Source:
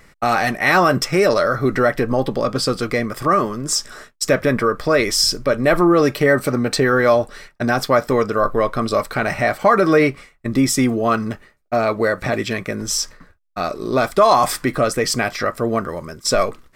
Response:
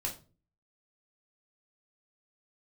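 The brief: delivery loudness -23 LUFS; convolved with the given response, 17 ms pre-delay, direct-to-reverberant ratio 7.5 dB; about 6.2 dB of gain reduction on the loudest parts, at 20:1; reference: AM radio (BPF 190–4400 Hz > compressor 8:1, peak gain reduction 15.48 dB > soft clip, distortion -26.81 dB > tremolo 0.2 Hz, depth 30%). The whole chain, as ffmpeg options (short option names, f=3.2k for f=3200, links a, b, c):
-filter_complex "[0:a]acompressor=threshold=-15dB:ratio=20,asplit=2[a][b];[1:a]atrim=start_sample=2205,adelay=17[c];[b][c]afir=irnorm=-1:irlink=0,volume=-9.5dB[d];[a][d]amix=inputs=2:normalize=0,highpass=190,lowpass=4.4k,acompressor=threshold=-30dB:ratio=8,asoftclip=threshold=-18dB,tremolo=f=0.2:d=0.3,volume=12.5dB"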